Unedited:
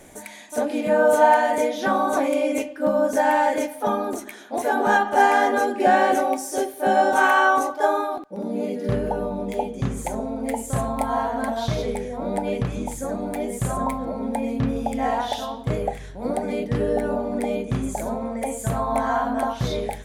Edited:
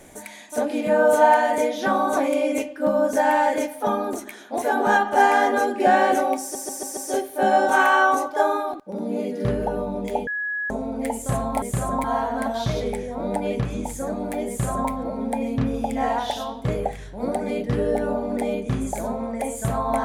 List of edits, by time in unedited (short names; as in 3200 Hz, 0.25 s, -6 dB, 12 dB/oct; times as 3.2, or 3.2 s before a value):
6.41 stutter 0.14 s, 5 plays
9.71–10.14 bleep 1680 Hz -24 dBFS
13.5–13.92 copy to 11.06